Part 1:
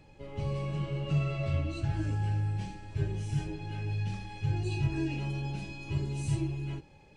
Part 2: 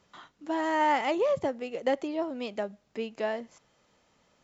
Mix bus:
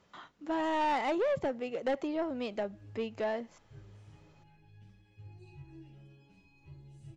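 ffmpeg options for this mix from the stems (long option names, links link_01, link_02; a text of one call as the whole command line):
ffmpeg -i stem1.wav -i stem2.wav -filter_complex "[0:a]asplit=2[link_01][link_02];[link_02]adelay=7.5,afreqshift=-0.9[link_03];[link_01][link_03]amix=inputs=2:normalize=1,adelay=750,volume=-18.5dB[link_04];[1:a]volume=0dB,asplit=2[link_05][link_06];[link_06]apad=whole_len=349536[link_07];[link_04][link_07]sidechaincompress=threshold=-43dB:ratio=8:attack=16:release=194[link_08];[link_08][link_05]amix=inputs=2:normalize=0,highshelf=frequency=5600:gain=-8,asoftclip=type=tanh:threshold=-25.5dB" out.wav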